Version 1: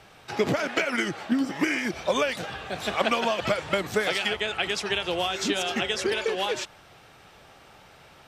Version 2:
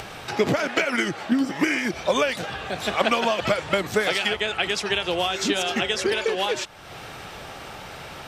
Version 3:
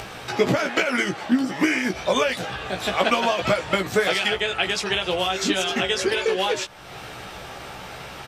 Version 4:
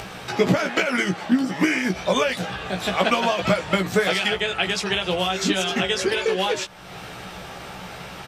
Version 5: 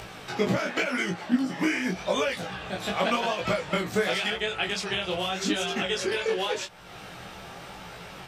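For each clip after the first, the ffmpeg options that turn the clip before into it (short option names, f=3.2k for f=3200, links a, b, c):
-af "acompressor=mode=upward:threshold=-30dB:ratio=2.5,volume=3dB"
-filter_complex "[0:a]asplit=2[a][b];[b]adelay=16,volume=-5dB[c];[a][c]amix=inputs=2:normalize=0"
-af "equalizer=f=180:t=o:w=0.28:g=8"
-af "flanger=delay=18:depth=7.1:speed=0.88,volume=-2.5dB"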